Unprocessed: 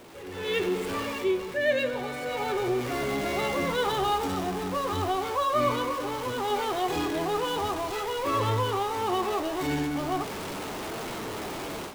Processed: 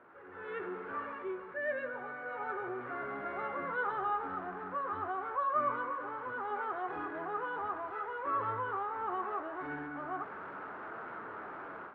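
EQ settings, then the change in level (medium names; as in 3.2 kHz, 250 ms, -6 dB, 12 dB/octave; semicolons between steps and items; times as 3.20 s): high-pass 98 Hz 6 dB/octave; four-pole ladder low-pass 1.6 kHz, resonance 65%; bass shelf 290 Hz -7 dB; 0.0 dB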